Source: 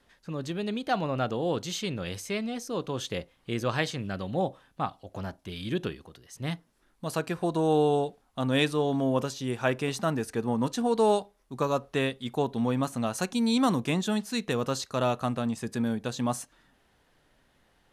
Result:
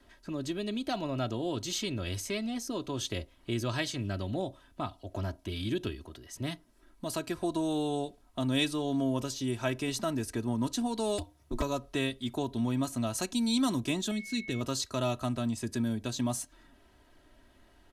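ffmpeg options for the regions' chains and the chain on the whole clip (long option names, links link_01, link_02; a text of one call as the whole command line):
ffmpeg -i in.wav -filter_complex "[0:a]asettb=1/sr,asplit=3[link_01][link_02][link_03];[link_01]atrim=end=11.184[link_04];[link_02]atrim=start=11.18:end=11.62,asetpts=PTS-STARTPTS,afade=type=in:duration=0.004:curve=qsin,afade=type=out:start_time=0.436:duration=0.004:curve=qsin,acontrast=26,aeval=exprs='0.0794*(abs(mod(val(0)/0.0794+3,4)-2)-1)':channel_layout=same,aeval=exprs='val(0)*sin(2*PI*110*n/s)':channel_layout=same[link_05];[link_03]atrim=start=11.616[link_06];[link_04][link_05]acrossfade=duration=0.004:curve1=hsin:curve2=qsin[link_07];[link_07][link_06]acrossfade=duration=0.004:curve1=qsin:curve2=hsin,asettb=1/sr,asplit=3[link_08][link_09][link_10];[link_08]atrim=end=14.114[link_11];[link_09]atrim=start=14.11:end=14.61,asetpts=PTS-STARTPTS,afade=type=in:duration=0.004:curve=qsin,afade=type=out:start_time=0.496:duration=0.004:curve=qsin,equalizer=frequency=940:width_type=o:width=1.2:gain=-14.5,aeval=exprs='val(0)+0.0112*sin(2*PI*2200*n/s)':channel_layout=same,lowpass=frequency=3700:poles=1[link_12];[link_10]atrim=start=14.606[link_13];[link_11][link_12]acrossfade=duration=0.004:curve1=hsin:curve2=qsin[link_14];[link_14][link_13]acrossfade=duration=0.004:curve1=qsin:curve2=hsin,lowshelf=frequency=500:gain=5.5,acrossover=split=130|3000[link_15][link_16][link_17];[link_16]acompressor=threshold=-39dB:ratio=2[link_18];[link_15][link_18][link_17]amix=inputs=3:normalize=0,aecho=1:1:3.1:0.66" out.wav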